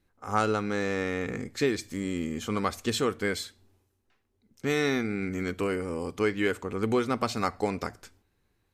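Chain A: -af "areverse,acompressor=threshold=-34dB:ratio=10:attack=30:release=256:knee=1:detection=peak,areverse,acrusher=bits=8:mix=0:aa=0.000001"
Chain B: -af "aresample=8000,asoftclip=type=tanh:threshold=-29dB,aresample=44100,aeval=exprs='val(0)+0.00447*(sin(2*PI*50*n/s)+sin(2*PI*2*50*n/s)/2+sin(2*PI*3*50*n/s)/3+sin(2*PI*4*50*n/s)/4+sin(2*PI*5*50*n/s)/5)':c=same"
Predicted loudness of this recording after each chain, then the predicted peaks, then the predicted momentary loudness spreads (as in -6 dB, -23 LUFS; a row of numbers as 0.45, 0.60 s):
-37.0, -35.0 LUFS; -17.0, -24.5 dBFS; 3, 18 LU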